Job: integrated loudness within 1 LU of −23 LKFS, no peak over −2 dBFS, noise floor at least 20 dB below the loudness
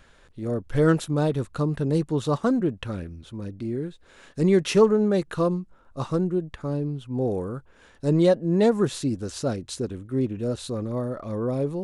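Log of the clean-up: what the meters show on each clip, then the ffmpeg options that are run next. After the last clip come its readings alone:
integrated loudness −25.0 LKFS; sample peak −7.5 dBFS; target loudness −23.0 LKFS
→ -af "volume=2dB"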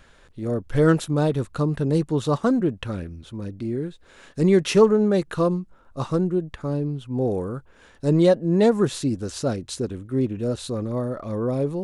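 integrated loudness −23.0 LKFS; sample peak −5.5 dBFS; background noise floor −54 dBFS

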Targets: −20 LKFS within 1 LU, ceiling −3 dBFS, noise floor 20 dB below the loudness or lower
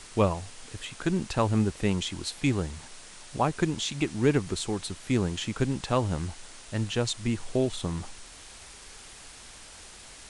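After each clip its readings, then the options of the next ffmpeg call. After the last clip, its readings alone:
background noise floor −48 dBFS; target noise floor −49 dBFS; integrated loudness −29.0 LKFS; sample peak −10.0 dBFS; target loudness −20.0 LKFS
→ -af "afftdn=noise_reduction=6:noise_floor=-48"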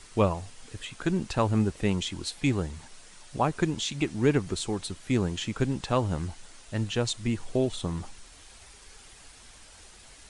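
background noise floor −52 dBFS; integrated loudness −29.0 LKFS; sample peak −10.5 dBFS; target loudness −20.0 LKFS
→ -af "volume=9dB,alimiter=limit=-3dB:level=0:latency=1"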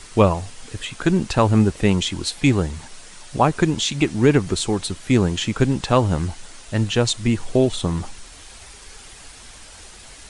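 integrated loudness −20.5 LKFS; sample peak −3.0 dBFS; background noise floor −43 dBFS

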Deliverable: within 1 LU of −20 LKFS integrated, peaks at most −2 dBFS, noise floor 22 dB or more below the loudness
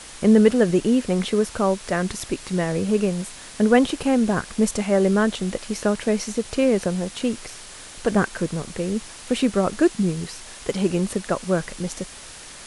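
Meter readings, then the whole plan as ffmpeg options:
background noise floor −41 dBFS; target noise floor −44 dBFS; integrated loudness −22.0 LKFS; sample peak −3.0 dBFS; target loudness −20.0 LKFS
→ -af "afftdn=noise_reduction=6:noise_floor=-41"
-af "volume=2dB,alimiter=limit=-2dB:level=0:latency=1"

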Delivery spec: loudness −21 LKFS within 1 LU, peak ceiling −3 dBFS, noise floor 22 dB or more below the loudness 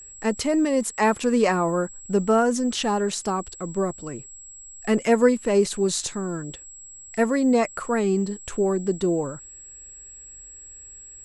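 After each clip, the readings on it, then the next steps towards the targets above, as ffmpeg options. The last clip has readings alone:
interfering tone 7,700 Hz; level of the tone −41 dBFS; integrated loudness −23.5 LKFS; sample peak −6.0 dBFS; target loudness −21.0 LKFS
→ -af "bandreject=frequency=7700:width=30"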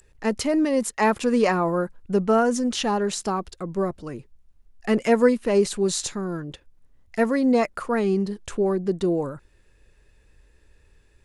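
interfering tone none found; integrated loudness −23.5 LKFS; sample peak −6.0 dBFS; target loudness −21.0 LKFS
→ -af "volume=2.5dB"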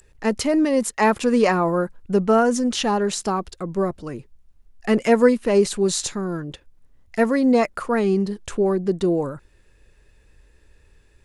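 integrated loudness −21.0 LKFS; sample peak −3.5 dBFS; background noise floor −57 dBFS

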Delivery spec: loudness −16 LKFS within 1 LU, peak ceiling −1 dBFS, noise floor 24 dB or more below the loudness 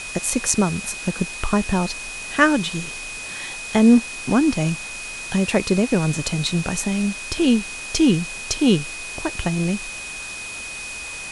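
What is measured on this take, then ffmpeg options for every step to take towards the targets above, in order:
interfering tone 2,500 Hz; level of the tone −32 dBFS; background noise floor −33 dBFS; target noise floor −46 dBFS; integrated loudness −21.5 LKFS; sample peak −3.0 dBFS; target loudness −16.0 LKFS
→ -af "bandreject=frequency=2500:width=30"
-af "afftdn=noise_reduction=13:noise_floor=-33"
-af "volume=5.5dB,alimiter=limit=-1dB:level=0:latency=1"

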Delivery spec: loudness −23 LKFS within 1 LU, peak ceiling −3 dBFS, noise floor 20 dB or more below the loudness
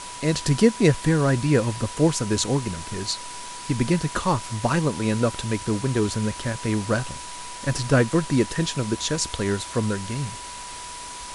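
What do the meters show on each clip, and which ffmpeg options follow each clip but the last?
interfering tone 980 Hz; level of the tone −38 dBFS; background noise floor −37 dBFS; target noise floor −44 dBFS; integrated loudness −23.5 LKFS; sample peak −4.0 dBFS; target loudness −23.0 LKFS
→ -af "bandreject=frequency=980:width=30"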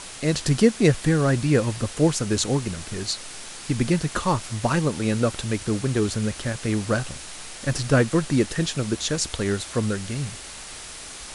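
interfering tone none found; background noise floor −39 dBFS; target noise floor −44 dBFS
→ -af "afftdn=noise_reduction=6:noise_floor=-39"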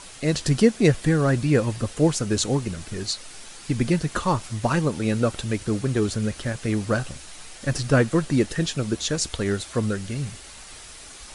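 background noise floor −43 dBFS; target noise floor −44 dBFS
→ -af "afftdn=noise_reduction=6:noise_floor=-43"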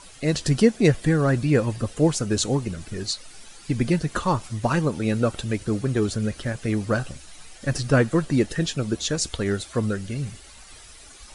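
background noise floor −46 dBFS; integrated loudness −24.0 LKFS; sample peak −5.0 dBFS; target loudness −23.0 LKFS
→ -af "volume=1dB"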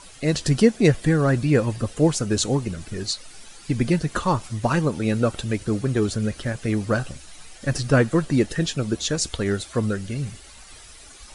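integrated loudness −23.0 LKFS; sample peak −4.0 dBFS; background noise floor −45 dBFS

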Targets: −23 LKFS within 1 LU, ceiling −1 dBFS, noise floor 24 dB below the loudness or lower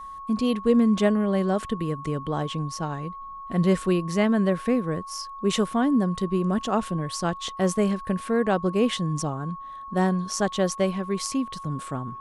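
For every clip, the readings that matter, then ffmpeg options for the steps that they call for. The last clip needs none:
interfering tone 1,100 Hz; level of the tone −36 dBFS; integrated loudness −25.0 LKFS; sample peak −7.5 dBFS; target loudness −23.0 LKFS
→ -af "bandreject=frequency=1100:width=30"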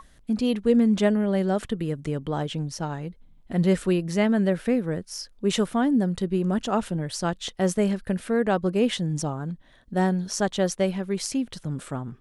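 interfering tone none found; integrated loudness −25.5 LKFS; sample peak −8.0 dBFS; target loudness −23.0 LKFS
→ -af "volume=2.5dB"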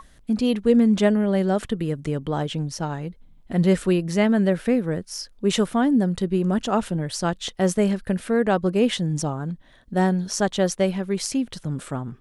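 integrated loudness −23.0 LKFS; sample peak −5.5 dBFS; background noise floor −52 dBFS

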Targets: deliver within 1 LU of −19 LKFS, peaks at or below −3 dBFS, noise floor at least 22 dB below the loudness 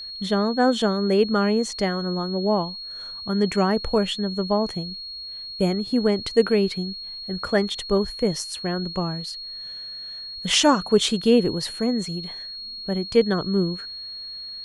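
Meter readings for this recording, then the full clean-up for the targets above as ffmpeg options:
interfering tone 4,300 Hz; level of the tone −33 dBFS; integrated loudness −23.5 LKFS; sample peak −5.0 dBFS; target loudness −19.0 LKFS
→ -af "bandreject=frequency=4300:width=30"
-af "volume=4.5dB,alimiter=limit=-3dB:level=0:latency=1"

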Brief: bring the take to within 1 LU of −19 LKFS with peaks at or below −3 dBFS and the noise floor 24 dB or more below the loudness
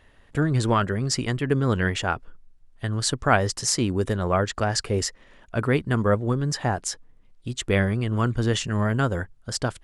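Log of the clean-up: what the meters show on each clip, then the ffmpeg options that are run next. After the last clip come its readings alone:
integrated loudness −24.5 LKFS; sample peak −4.0 dBFS; target loudness −19.0 LKFS
→ -af "volume=5.5dB,alimiter=limit=-3dB:level=0:latency=1"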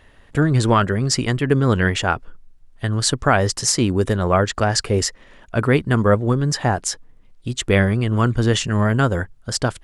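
integrated loudness −19.5 LKFS; sample peak −3.0 dBFS; background noise floor −50 dBFS

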